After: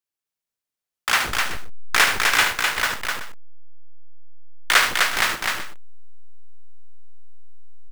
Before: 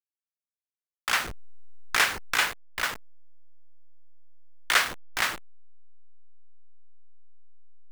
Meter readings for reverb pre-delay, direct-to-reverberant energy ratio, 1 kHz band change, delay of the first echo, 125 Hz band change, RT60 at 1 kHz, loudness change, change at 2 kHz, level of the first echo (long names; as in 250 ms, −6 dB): no reverb audible, no reverb audible, +7.5 dB, 74 ms, +8.0 dB, no reverb audible, +6.5 dB, +7.5 dB, −8.5 dB